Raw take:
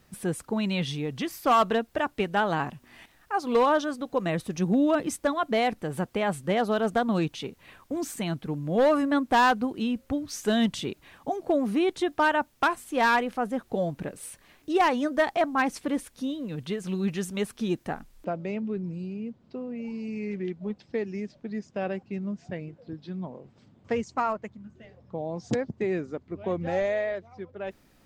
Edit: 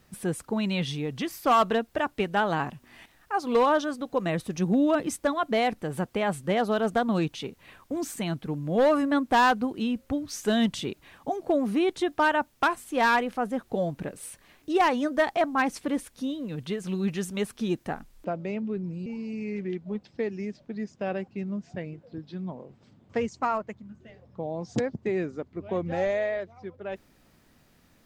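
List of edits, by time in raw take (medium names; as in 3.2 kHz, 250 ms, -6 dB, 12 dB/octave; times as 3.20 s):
19.06–19.81 s: delete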